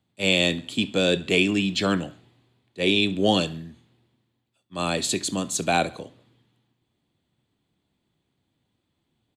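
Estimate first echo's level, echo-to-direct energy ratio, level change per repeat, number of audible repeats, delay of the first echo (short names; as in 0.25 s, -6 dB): -22.5 dB, -21.5 dB, -6.0 dB, 3, 68 ms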